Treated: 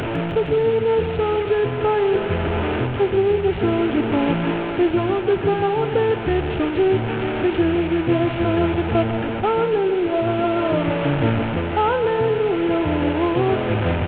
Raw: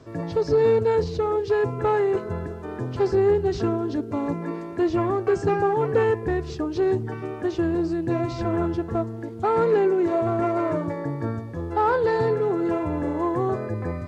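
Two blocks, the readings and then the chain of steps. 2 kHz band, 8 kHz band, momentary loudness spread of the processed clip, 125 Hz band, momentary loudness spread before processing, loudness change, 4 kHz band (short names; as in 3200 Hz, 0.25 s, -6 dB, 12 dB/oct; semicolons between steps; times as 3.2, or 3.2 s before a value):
+7.5 dB, n/a, 3 LU, +5.5 dB, 9 LU, +4.0 dB, +12.0 dB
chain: delta modulation 16 kbps, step -23.5 dBFS; bell 1900 Hz -4.5 dB 0.42 oct; notch 1100 Hz, Q 6.1; vocal rider within 5 dB 0.5 s; feedback echo 0.155 s, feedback 58%, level -12.5 dB; gain +3.5 dB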